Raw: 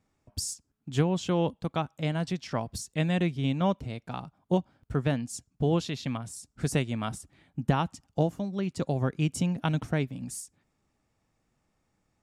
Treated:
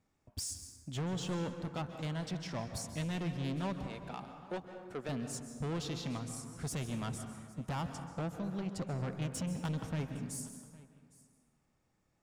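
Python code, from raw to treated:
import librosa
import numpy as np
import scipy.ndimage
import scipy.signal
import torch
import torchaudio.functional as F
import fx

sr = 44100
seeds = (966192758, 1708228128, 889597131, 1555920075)

p1 = fx.highpass(x, sr, hz=330.0, slope=12, at=(3.86, 5.09))
p2 = 10.0 ** (-30.0 / 20.0) * np.tanh(p1 / 10.0 ** (-30.0 / 20.0))
p3 = p2 + fx.echo_single(p2, sr, ms=810, db=-21.5, dry=0)
p4 = fx.rev_plate(p3, sr, seeds[0], rt60_s=1.7, hf_ratio=0.45, predelay_ms=120, drr_db=7.0)
y = F.gain(torch.from_numpy(p4), -3.5).numpy()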